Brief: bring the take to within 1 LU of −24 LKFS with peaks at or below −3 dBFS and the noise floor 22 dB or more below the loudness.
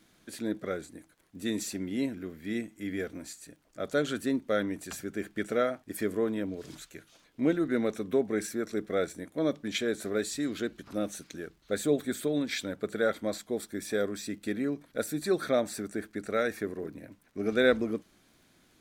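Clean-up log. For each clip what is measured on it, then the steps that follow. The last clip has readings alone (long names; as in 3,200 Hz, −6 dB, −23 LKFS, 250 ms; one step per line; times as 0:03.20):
crackle rate 20 per second; integrated loudness −32.0 LKFS; sample peak −9.5 dBFS; target loudness −24.0 LKFS
→ click removal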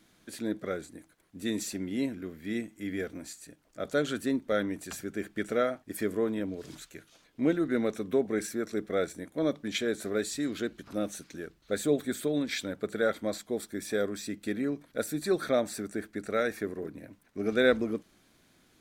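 crackle rate 0.053 per second; integrated loudness −32.0 LKFS; sample peak −9.5 dBFS; target loudness −24.0 LKFS
→ level +8 dB
brickwall limiter −3 dBFS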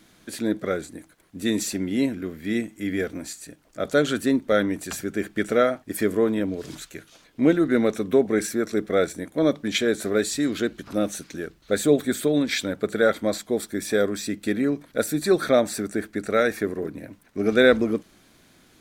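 integrated loudness −24.0 LKFS; sample peak −3.0 dBFS; background noise floor −57 dBFS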